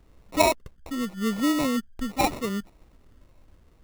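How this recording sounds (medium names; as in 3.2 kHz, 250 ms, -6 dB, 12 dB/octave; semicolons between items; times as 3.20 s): phasing stages 6, 0.81 Hz, lowest notch 520–2100 Hz; aliases and images of a low sample rate 1.6 kHz, jitter 0%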